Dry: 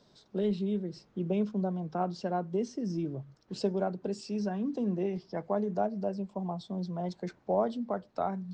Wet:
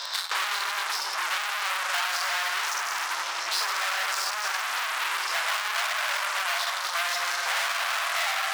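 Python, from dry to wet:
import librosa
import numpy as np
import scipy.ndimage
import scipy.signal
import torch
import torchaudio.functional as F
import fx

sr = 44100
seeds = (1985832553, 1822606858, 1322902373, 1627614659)

y = fx.spec_dilate(x, sr, span_ms=60)
y = fx.rev_fdn(y, sr, rt60_s=1.7, lf_ratio=0.85, hf_ratio=0.9, size_ms=26.0, drr_db=-2.5)
y = fx.leveller(y, sr, passes=3)
y = np.clip(10.0 ** (26.5 / 20.0) * y, -1.0, 1.0) / 10.0 ** (26.5 / 20.0)
y = scipy.signal.sosfilt(scipy.signal.butter(4, 1100.0, 'highpass', fs=sr, output='sos'), y)
y = fx.band_squash(y, sr, depth_pct=100)
y = y * librosa.db_to_amplitude(8.0)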